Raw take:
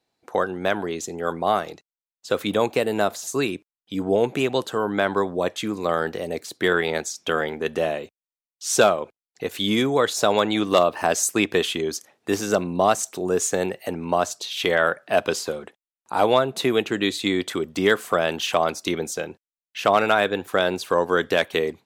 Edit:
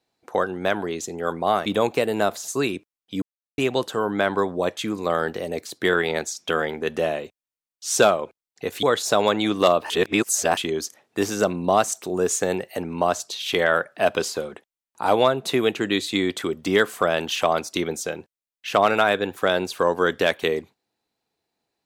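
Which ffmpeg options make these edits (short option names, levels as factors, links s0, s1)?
-filter_complex "[0:a]asplit=7[s0][s1][s2][s3][s4][s5][s6];[s0]atrim=end=1.662[s7];[s1]atrim=start=2.448:end=4.01,asetpts=PTS-STARTPTS,afade=t=out:st=1.558:d=0.004:c=hsin[s8];[s2]atrim=start=4.01:end=4.37,asetpts=PTS-STARTPTS,volume=0[s9];[s3]atrim=start=4.37:end=9.622,asetpts=PTS-STARTPTS,afade=t=in:d=0.004:c=hsin[s10];[s4]atrim=start=9.938:end=11.012[s11];[s5]atrim=start=11.008:end=11.682,asetpts=PTS-STARTPTS,areverse[s12];[s6]atrim=start=11.678[s13];[s8][s9][s10]concat=n=3:v=0:a=1[s14];[s7][s14]acrossfade=d=0.004:c1=hsin:c2=hsin[s15];[s15][s11]acrossfade=d=0.004:c1=hsin:c2=hsin[s16];[s16][s12]acrossfade=d=0.004:c1=hsin:c2=hsin[s17];[s17][s13]acrossfade=d=0.004:c1=hsin:c2=hsin"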